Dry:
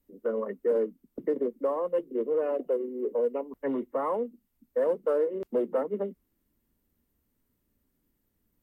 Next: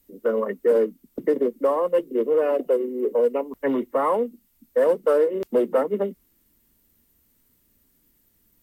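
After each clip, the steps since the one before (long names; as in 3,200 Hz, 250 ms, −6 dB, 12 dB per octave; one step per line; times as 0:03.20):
high-shelf EQ 2,100 Hz +10 dB
level +6.5 dB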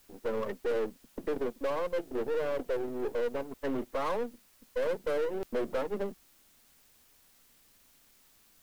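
gain on one half-wave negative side −12 dB
in parallel at −10 dB: bit-depth reduction 8 bits, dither triangular
on the sum: soft clipping −18.5 dBFS, distortion −10 dB
level −6 dB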